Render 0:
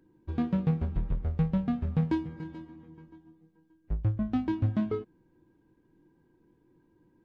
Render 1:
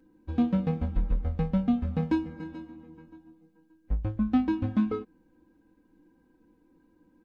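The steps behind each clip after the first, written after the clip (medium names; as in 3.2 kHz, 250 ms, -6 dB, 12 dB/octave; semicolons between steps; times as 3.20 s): comb 3.9 ms, depth 86%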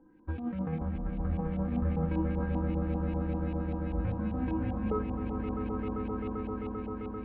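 compressor with a negative ratio -30 dBFS, ratio -1; echo with a slow build-up 131 ms, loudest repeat 8, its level -7.5 dB; LFO low-pass saw up 5.1 Hz 830–2800 Hz; trim -3.5 dB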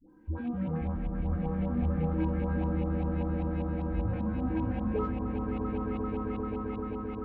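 in parallel at -11 dB: saturation -34 dBFS, distortion -9 dB; on the sum: phase dispersion highs, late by 94 ms, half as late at 570 Hz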